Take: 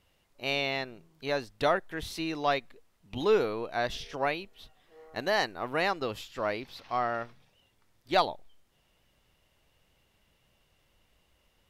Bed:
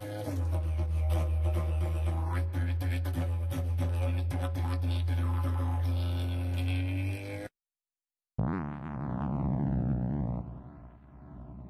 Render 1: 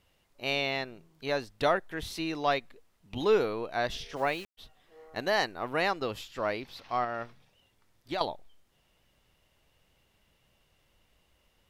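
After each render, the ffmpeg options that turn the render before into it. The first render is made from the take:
-filter_complex "[0:a]asplit=3[a][b][c];[a]afade=t=out:st=4.15:d=0.02[d];[b]aeval=exprs='val(0)*gte(abs(val(0)),0.00562)':c=same,afade=t=in:st=4.15:d=0.02,afade=t=out:st=4.57:d=0.02[e];[c]afade=t=in:st=4.57:d=0.02[f];[d][e][f]amix=inputs=3:normalize=0,asettb=1/sr,asplit=3[g][h][i];[g]atrim=end=7.044[j];[h]atrim=start=7.04:end=8.21,asetpts=PTS-STARTPTS,afade=t=in:d=0.004:c=qsin,afade=t=out:st=1.166:d=0.004:c=qsin,acompressor=threshold=-29dB:ratio=6:attack=3.2:release=140:knee=1:detection=peak[k];[i]atrim=start=8.206[l];[j][k]acrossfade=d=0.004:c1=hsin:c2=qsin[m];[m][l]acrossfade=d=0.004:c1=qsin:c2=hsin"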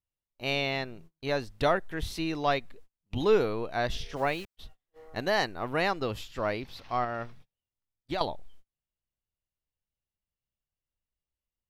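-af "agate=range=-31dB:threshold=-55dB:ratio=16:detection=peak,lowshelf=f=150:g=10.5"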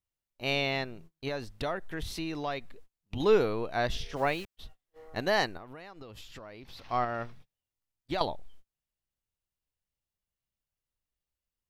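-filter_complex "[0:a]asettb=1/sr,asplit=3[a][b][c];[a]atrim=end=1.284[d];[b]atrim=start=1.28:end=3.2,asetpts=PTS-STARTPTS,afade=t=in:d=0.004:c=qsin,afade=t=out:st=1.916:d=0.004:c=qsin,acompressor=threshold=-32dB:ratio=2.5:attack=3.2:release=140:knee=1:detection=peak[e];[c]atrim=start=3.196[f];[d][e]acrossfade=d=0.004:c1=hsin:c2=qsin[g];[g][f]acrossfade=d=0.004:c1=qsin:c2=hsin,asettb=1/sr,asplit=3[h][i][j];[h]atrim=end=5.574[k];[i]atrim=start=5.57:end=6.84,asetpts=PTS-STARTPTS,afade=t=in:d=0.004:c=qsin,afade=t=out:st=1.266:d=0.004:c=qsin,acompressor=threshold=-42dB:ratio=12:attack=3.2:release=140:knee=1:detection=peak[l];[j]atrim=start=6.836[m];[k][l]acrossfade=d=0.004:c1=hsin:c2=qsin[n];[n][m]acrossfade=d=0.004:c1=qsin:c2=hsin"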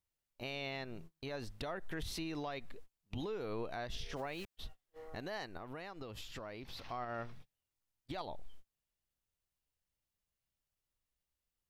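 -af "acompressor=threshold=-33dB:ratio=6,alimiter=level_in=7.5dB:limit=-24dB:level=0:latency=1:release=144,volume=-7.5dB"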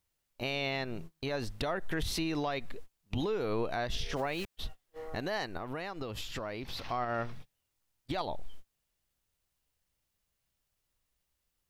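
-af "volume=8dB"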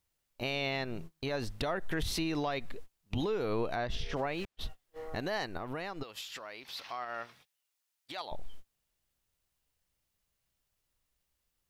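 -filter_complex "[0:a]asettb=1/sr,asplit=3[a][b][c];[a]atrim=end=3.754[d];[b]atrim=start=3.75:end=4.61,asetpts=PTS-STARTPTS,afade=t=in:d=0.004:c=qsin,afade=t=out:st=0.856:d=0.004:c=qsin,lowpass=f=3.2k:p=1[e];[c]atrim=start=4.606[f];[d][e]acrossfade=d=0.004:c1=hsin:c2=qsin[g];[g][f]acrossfade=d=0.004:c1=qsin:c2=hsin,asettb=1/sr,asplit=3[h][i][j];[h]atrim=end=6.034[k];[i]atrim=start=6.03:end=8.32,asetpts=PTS-STARTPTS,afade=t=in:d=0.004:c=qsin,afade=t=out:st=2.286:d=0.004:c=qsin,highpass=f=1.4k:p=1[l];[j]atrim=start=8.316[m];[k][l]acrossfade=d=0.004:c1=hsin:c2=qsin[n];[n][m]acrossfade=d=0.004:c1=qsin:c2=hsin"

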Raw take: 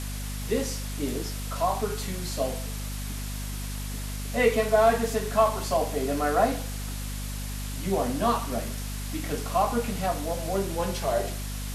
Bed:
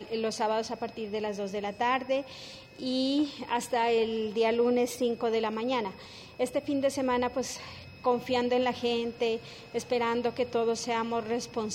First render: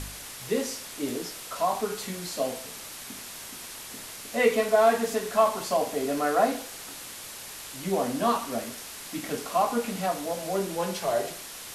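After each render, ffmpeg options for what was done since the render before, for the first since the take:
-af "bandreject=f=50:t=h:w=4,bandreject=f=100:t=h:w=4,bandreject=f=150:t=h:w=4,bandreject=f=200:t=h:w=4,bandreject=f=250:t=h:w=4"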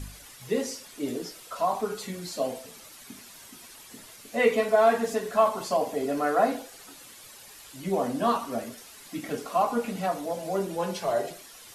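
-af "afftdn=nr=10:nf=-41"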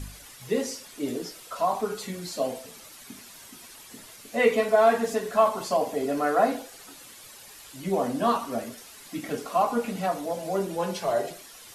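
-af "volume=1dB"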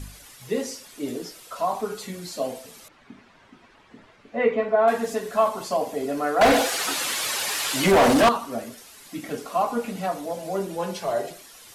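-filter_complex "[0:a]asettb=1/sr,asplit=3[a][b][c];[a]atrim=end=2.884[d];[b]atrim=start=2.88:end=4.88,asetpts=PTS-STARTPTS,afade=t=in:d=0.004:c=qsin,afade=t=out:st=1.996:d=0.004:c=qsin,lowpass=2k[e];[c]atrim=start=4.876[f];[d][e]acrossfade=d=0.004:c1=hsin:c2=qsin[g];[g][f]acrossfade=d=0.004:c1=qsin:c2=hsin,asettb=1/sr,asplit=3[h][i][j];[h]atrim=end=6.414[k];[i]atrim=start=6.41:end=8.29,asetpts=PTS-STARTPTS,afade=t=in:d=0.004:c=qsin,afade=t=out:st=1.876:d=0.004:c=qsin,asplit=2[l][m];[m]highpass=f=720:p=1,volume=31dB,asoftclip=type=tanh:threshold=-8.5dB[n];[l][n]amix=inputs=2:normalize=0,lowpass=f=4.7k:p=1,volume=-6dB[o];[j]atrim=start=8.286[p];[k][o]acrossfade=d=0.004:c1=hsin:c2=qsin[q];[q][p]acrossfade=d=0.004:c1=qsin:c2=hsin"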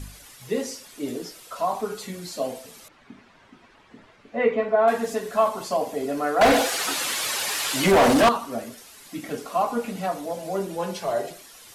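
-af anull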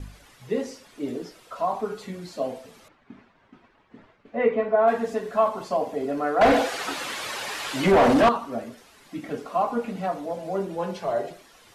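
-af "agate=range=-33dB:threshold=-49dB:ratio=3:detection=peak,lowpass=f=2.1k:p=1"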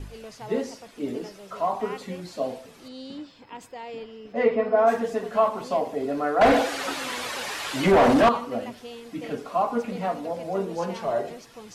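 -filter_complex "[1:a]volume=-11.5dB[a];[0:a][a]amix=inputs=2:normalize=0"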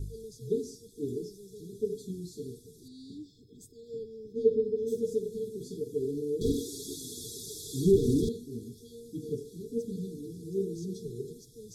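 -af "afftfilt=real='re*(1-between(b*sr/4096,470,3300))':imag='im*(1-between(b*sr/4096,470,3300))':win_size=4096:overlap=0.75,equalizer=f=125:t=o:w=1:g=6,equalizer=f=250:t=o:w=1:g=-9,equalizer=f=1k:t=o:w=1:g=10,equalizer=f=2k:t=o:w=1:g=-10,equalizer=f=4k:t=o:w=1:g=-9"

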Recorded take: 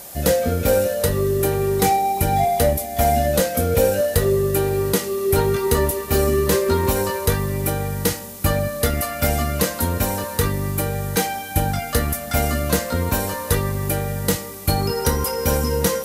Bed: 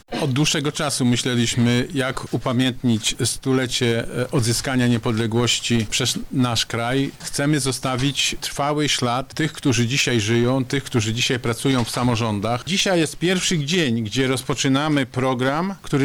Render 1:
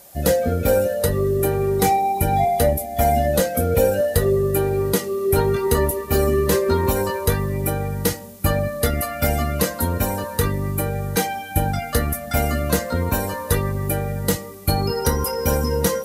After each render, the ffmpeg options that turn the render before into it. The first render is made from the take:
-af "afftdn=nr=9:nf=-32"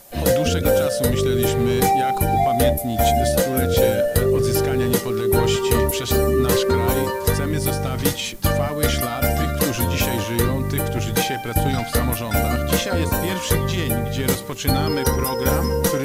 -filter_complex "[1:a]volume=-7dB[a];[0:a][a]amix=inputs=2:normalize=0"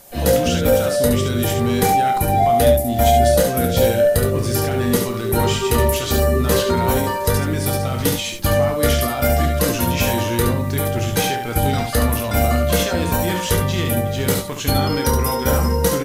-filter_complex "[0:a]asplit=2[a][b];[b]adelay=17,volume=-12dB[c];[a][c]amix=inputs=2:normalize=0,aecho=1:1:29|70:0.355|0.531"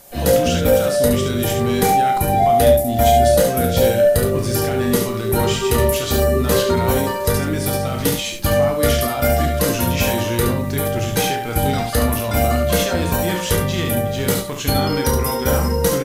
-filter_complex "[0:a]asplit=2[a][b];[b]adelay=36,volume=-11dB[c];[a][c]amix=inputs=2:normalize=0"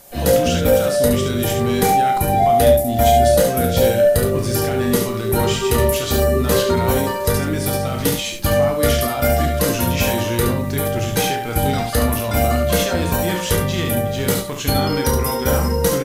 -af anull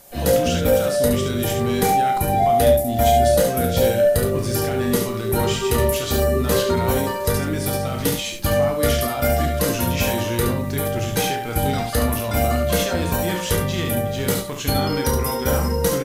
-af "volume=-2.5dB"

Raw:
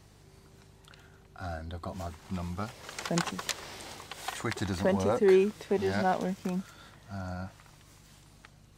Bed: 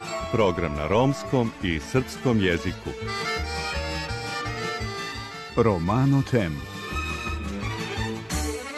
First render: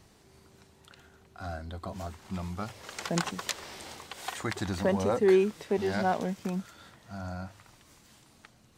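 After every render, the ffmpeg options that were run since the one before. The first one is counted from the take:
-af "bandreject=f=50:t=h:w=4,bandreject=f=100:t=h:w=4,bandreject=f=150:t=h:w=4"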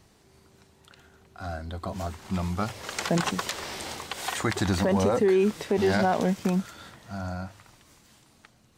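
-af "dynaudnorm=f=220:g=17:m=9dB,alimiter=limit=-15dB:level=0:latency=1:release=21"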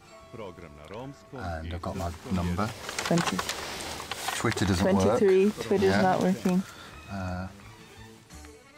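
-filter_complex "[1:a]volume=-19.5dB[a];[0:a][a]amix=inputs=2:normalize=0"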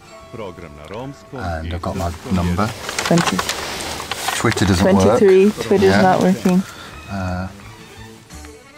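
-af "volume=10.5dB"

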